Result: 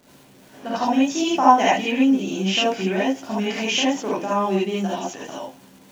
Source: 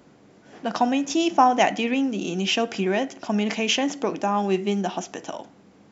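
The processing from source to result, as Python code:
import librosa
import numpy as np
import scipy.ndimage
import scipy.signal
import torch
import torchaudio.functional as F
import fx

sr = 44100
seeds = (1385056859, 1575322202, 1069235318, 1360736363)

y = fx.dmg_crackle(x, sr, seeds[0], per_s=190.0, level_db=-36.0)
y = fx.rev_gated(y, sr, seeds[1], gate_ms=100, shape='rising', drr_db=-7.0)
y = y * librosa.db_to_amplitude(-6.0)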